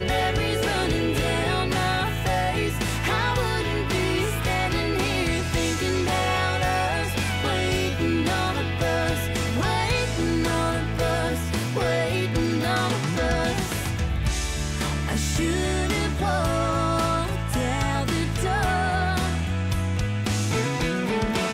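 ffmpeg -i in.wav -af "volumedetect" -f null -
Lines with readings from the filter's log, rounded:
mean_volume: -23.9 dB
max_volume: -12.6 dB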